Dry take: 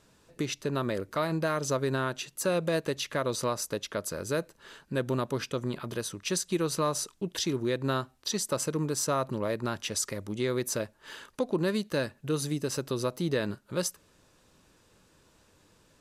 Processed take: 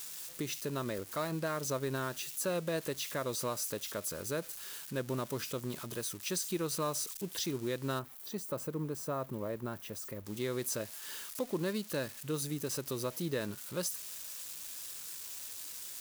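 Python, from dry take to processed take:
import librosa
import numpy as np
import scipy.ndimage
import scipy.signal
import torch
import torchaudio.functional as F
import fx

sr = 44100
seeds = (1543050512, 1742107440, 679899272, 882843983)

y = x + 0.5 * 10.0 ** (-29.0 / 20.0) * np.diff(np.sign(x), prepend=np.sign(x[:1]))
y = fx.peak_eq(y, sr, hz=5900.0, db=-12.5, octaves=2.9, at=(7.99, 10.26))
y = y * librosa.db_to_amplitude(-6.5)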